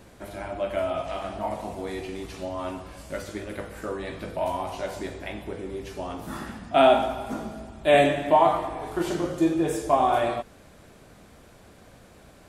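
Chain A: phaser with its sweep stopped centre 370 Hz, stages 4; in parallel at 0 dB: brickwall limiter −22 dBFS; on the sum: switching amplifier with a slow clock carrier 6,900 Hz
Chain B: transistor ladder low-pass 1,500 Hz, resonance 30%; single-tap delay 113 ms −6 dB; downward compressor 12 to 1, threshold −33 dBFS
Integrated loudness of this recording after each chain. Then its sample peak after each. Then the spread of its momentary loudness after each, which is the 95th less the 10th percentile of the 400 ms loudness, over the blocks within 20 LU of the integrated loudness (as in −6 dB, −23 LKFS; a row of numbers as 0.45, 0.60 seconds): −26.0, −39.5 LKFS; −9.0, −23.5 dBFS; 9, 21 LU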